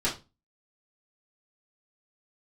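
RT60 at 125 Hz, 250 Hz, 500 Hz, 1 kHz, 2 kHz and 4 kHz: 0.40, 0.35, 0.30, 0.25, 0.25, 0.25 s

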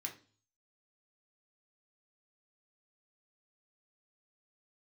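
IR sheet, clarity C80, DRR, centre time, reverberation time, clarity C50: 17.5 dB, 0.5 dB, 14 ms, 0.40 s, 12.0 dB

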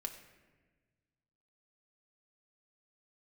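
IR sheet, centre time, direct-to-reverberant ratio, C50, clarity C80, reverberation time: 18 ms, 3.0 dB, 9.0 dB, 10.5 dB, 1.3 s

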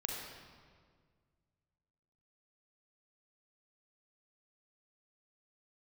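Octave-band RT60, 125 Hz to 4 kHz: 2.7, 2.2, 1.9, 1.7, 1.5, 1.3 s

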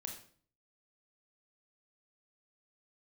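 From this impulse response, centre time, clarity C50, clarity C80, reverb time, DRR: 24 ms, 6.5 dB, 10.5 dB, 0.50 s, 2.0 dB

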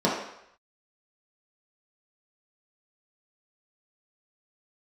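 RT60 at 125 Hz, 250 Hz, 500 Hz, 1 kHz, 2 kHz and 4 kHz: 0.55, 0.55, 0.70, 0.75, 0.80, 0.70 s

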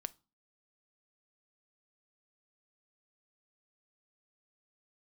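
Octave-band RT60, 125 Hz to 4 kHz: 0.40, 0.50, 0.30, 0.35, 0.25, 0.30 s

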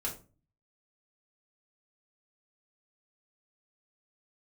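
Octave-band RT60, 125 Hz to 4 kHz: 0.70, 0.55, 0.40, 0.30, 0.25, 0.25 s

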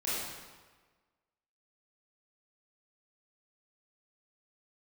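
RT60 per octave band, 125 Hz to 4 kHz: 1.4, 1.3, 1.4, 1.4, 1.3, 1.1 s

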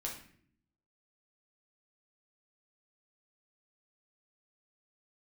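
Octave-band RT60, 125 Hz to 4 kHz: 0.95, 0.95, 0.65, 0.50, 0.55, 0.45 s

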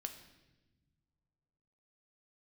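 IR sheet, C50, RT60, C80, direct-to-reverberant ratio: 10.0 dB, not exponential, 12.0 dB, 5.5 dB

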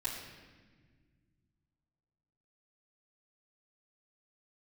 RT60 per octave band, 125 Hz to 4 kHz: 3.2, 2.7, 1.8, 1.3, 1.5, 1.2 s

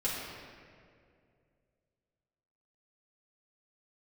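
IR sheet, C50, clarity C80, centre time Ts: -0.5 dB, 1.0 dB, 0.112 s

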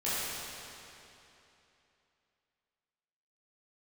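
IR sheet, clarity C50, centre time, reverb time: -5.5 dB, 0.203 s, 3.0 s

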